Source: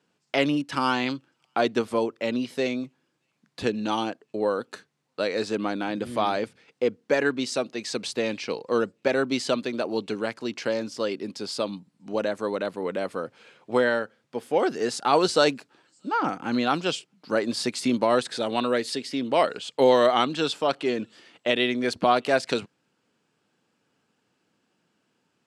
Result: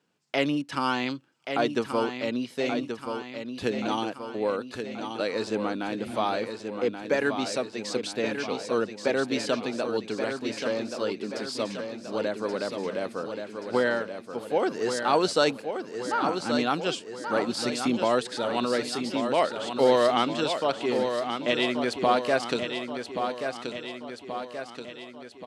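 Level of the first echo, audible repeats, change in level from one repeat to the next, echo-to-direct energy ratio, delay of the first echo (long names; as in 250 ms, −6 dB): −7.0 dB, 6, −5.0 dB, −5.5 dB, 1,129 ms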